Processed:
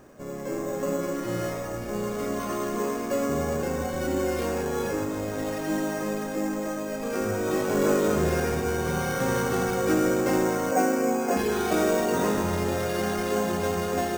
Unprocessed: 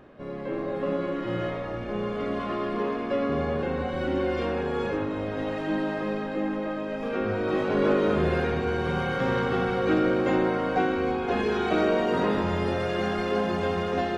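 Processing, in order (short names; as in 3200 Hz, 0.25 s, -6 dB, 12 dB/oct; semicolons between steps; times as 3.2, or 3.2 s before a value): 10.71–11.37 speaker cabinet 200–2900 Hz, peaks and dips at 240 Hz +9 dB, 400 Hz -4 dB, 570 Hz +9 dB; careless resampling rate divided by 6×, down none, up hold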